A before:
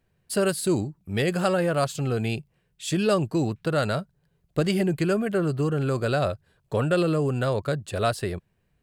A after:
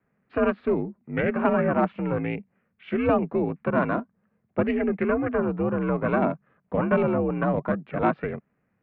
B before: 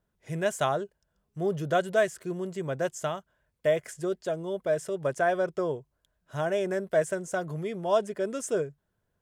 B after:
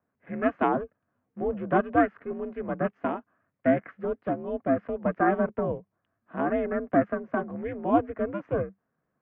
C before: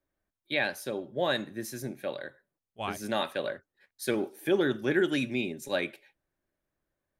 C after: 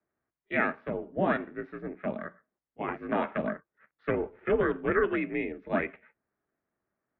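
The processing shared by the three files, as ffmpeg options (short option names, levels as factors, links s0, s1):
-af "aeval=exprs='val(0)*sin(2*PI*200*n/s)':c=same,highpass=f=300:t=q:w=0.5412,highpass=f=300:t=q:w=1.307,lowpass=f=2400:t=q:w=0.5176,lowpass=f=2400:t=q:w=0.7071,lowpass=f=2400:t=q:w=1.932,afreqshift=-150,volume=1.88"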